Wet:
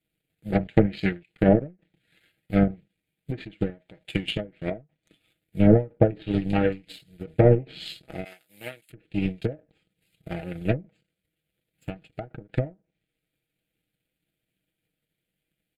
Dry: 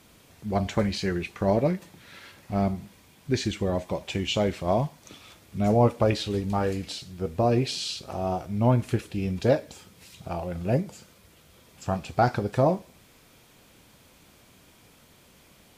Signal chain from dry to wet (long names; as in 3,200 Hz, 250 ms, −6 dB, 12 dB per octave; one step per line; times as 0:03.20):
power curve on the samples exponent 2
0:08.24–0:08.90: first difference
sine wavefolder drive 6 dB, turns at −8.5 dBFS
comb filter 6.3 ms, depth 56%
treble cut that deepens with the level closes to 910 Hz, closed at −19 dBFS
phaser with its sweep stopped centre 2,500 Hz, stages 4
0:04.19–0:04.71: downward compressor 10 to 1, threshold −32 dBFS, peak gain reduction 11 dB
every ending faded ahead of time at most 230 dB per second
level +8 dB